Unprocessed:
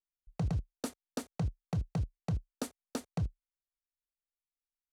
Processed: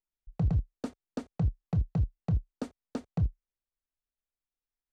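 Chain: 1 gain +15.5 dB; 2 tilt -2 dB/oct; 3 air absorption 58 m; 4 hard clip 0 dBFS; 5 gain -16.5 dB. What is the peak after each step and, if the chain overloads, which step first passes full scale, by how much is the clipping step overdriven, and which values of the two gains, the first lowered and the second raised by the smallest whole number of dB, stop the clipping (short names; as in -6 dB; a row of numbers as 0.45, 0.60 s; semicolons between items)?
-11.5, -3.0, -3.0, -3.0, -19.5 dBFS; no overload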